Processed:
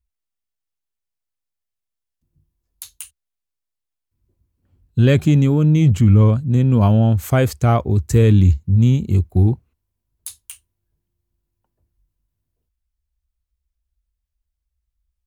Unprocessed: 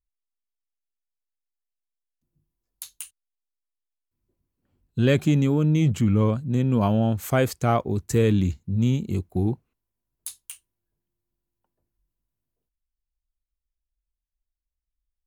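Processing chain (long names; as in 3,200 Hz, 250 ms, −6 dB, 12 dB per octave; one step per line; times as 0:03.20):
parametric band 70 Hz +15 dB 1.3 octaves
level +3 dB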